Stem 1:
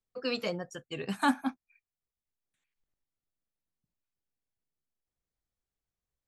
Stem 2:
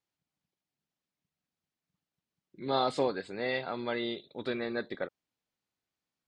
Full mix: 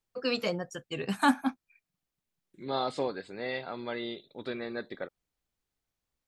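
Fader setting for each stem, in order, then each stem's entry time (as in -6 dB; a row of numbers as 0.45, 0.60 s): +2.5, -2.5 dB; 0.00, 0.00 s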